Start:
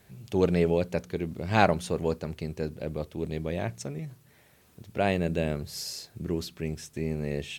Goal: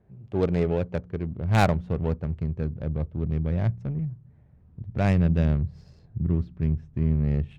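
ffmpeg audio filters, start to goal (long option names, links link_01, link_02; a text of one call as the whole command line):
ffmpeg -i in.wav -af "adynamicsmooth=sensitivity=2:basefreq=750,asubboost=boost=7:cutoff=150" out.wav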